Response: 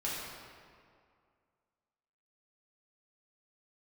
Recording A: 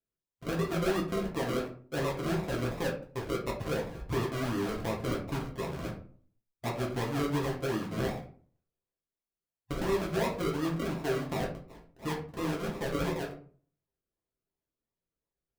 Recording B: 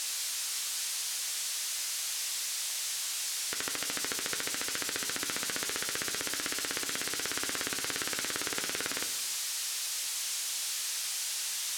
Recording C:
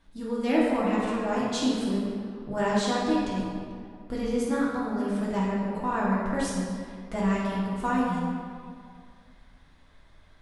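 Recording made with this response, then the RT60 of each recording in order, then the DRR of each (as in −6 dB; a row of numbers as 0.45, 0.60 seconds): C; 0.45, 1.1, 2.2 seconds; −3.0, 8.0, −7.5 decibels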